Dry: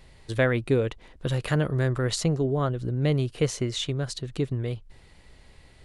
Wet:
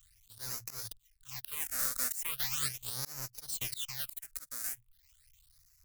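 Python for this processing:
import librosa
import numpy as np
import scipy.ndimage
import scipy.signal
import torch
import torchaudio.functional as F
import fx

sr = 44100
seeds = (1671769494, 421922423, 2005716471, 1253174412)

p1 = fx.halfwave_hold(x, sr)
p2 = scipy.signal.sosfilt(scipy.signal.cheby2(4, 50, [230.0, 610.0], 'bandstop', fs=sr, output='sos'), p1)
p3 = librosa.effects.preemphasis(p2, coef=0.8, zi=[0.0])
p4 = fx.hum_notches(p3, sr, base_hz=60, count=2)
p5 = fx.dereverb_blind(p4, sr, rt60_s=0.56)
p6 = fx.high_shelf(p5, sr, hz=2100.0, db=8.5)
p7 = fx.fuzz(p6, sr, gain_db=36.0, gate_db=-32.0)
p8 = p6 + (p7 * 10.0 ** (-5.5 / 20.0))
p9 = fx.phaser_stages(p8, sr, stages=8, low_hz=110.0, high_hz=3300.0, hz=0.39, feedback_pct=25)
p10 = fx.auto_swell(p9, sr, attack_ms=230.0)
y = p10 * 10.0 ** (-8.0 / 20.0)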